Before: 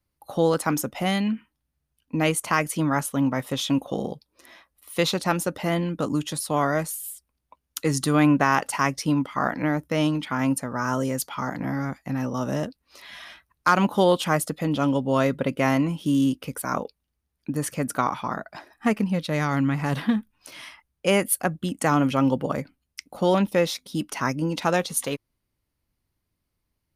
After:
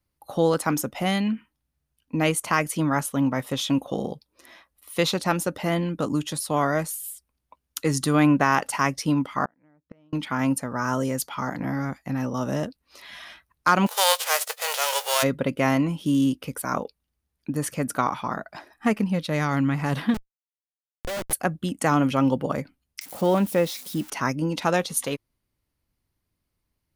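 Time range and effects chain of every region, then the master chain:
9.45–10.13 LPF 3700 Hz + high shelf 2500 Hz -9.5 dB + flipped gate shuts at -23 dBFS, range -36 dB
13.86–15.22 spectral whitening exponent 0.3 + brick-wall FIR high-pass 410 Hz
20.14–21.33 minimum comb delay 3.5 ms + Schmitt trigger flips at -22 dBFS
23.01–24.1 switching spikes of -25 dBFS + high shelf 2100 Hz -7.5 dB
whole clip: dry

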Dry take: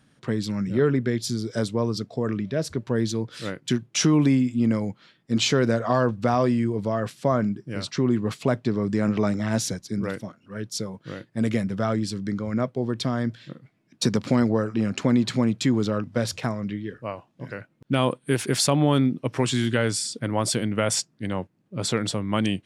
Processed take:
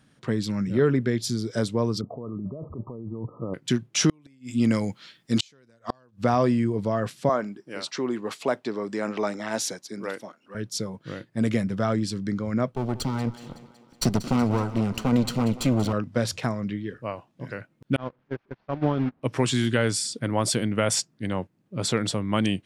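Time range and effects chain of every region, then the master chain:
2.01–3.54 negative-ratio compressor -33 dBFS + brick-wall FIR low-pass 1300 Hz
4.09–6.22 high shelf 2200 Hz +11.5 dB + flipped gate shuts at -11 dBFS, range -38 dB
7.29–10.55 HPF 360 Hz + bell 860 Hz +3.5 dB 0.34 oct
12.72–15.93 minimum comb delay 0.68 ms + notch 1700 Hz, Q 5.6 + thinning echo 0.186 s, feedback 61%, high-pass 160 Hz, level -15.5 dB
17.96–19.23 delta modulation 32 kbps, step -22 dBFS + gate -19 dBFS, range -38 dB + LPF 1600 Hz
whole clip: dry

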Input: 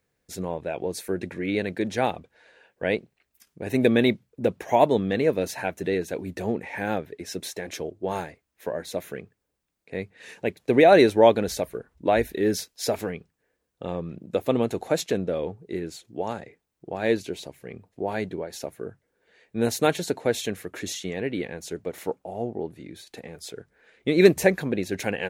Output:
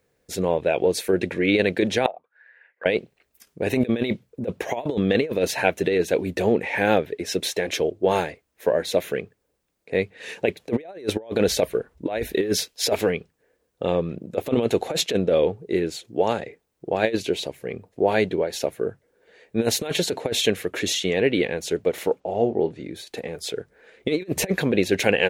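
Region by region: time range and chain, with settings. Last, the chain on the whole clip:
2.06–2.86 auto-wah 640–2100 Hz, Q 9.6, down, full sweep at -25.5 dBFS + three-band squash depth 70%
22.2–22.84 LPF 7200 Hz 24 dB/oct + doubler 30 ms -12 dB
whole clip: bell 480 Hz +6 dB 0.96 oct; negative-ratio compressor -21 dBFS, ratio -0.5; dynamic EQ 3000 Hz, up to +8 dB, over -47 dBFS, Q 1.1; gain +1 dB

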